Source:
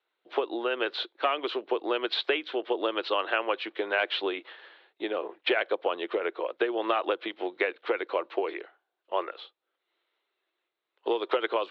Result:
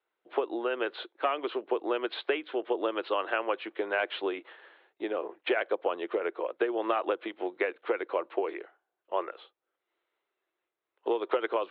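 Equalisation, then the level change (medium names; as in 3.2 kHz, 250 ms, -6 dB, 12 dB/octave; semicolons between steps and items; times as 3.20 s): distance through air 380 m; 0.0 dB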